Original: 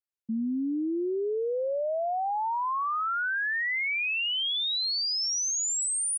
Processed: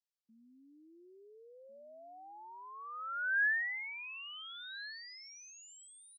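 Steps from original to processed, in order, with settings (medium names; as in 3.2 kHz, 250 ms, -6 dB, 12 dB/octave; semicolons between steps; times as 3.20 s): band-pass sweep 4.8 kHz -> 810 Hz, 2.71–3.93 s; echo from a far wall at 240 m, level -11 dB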